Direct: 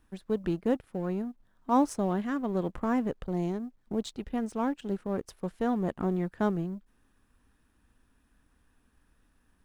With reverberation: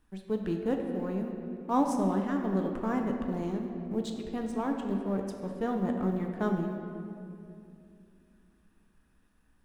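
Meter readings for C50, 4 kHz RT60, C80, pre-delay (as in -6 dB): 4.0 dB, 1.7 s, 5.5 dB, 5 ms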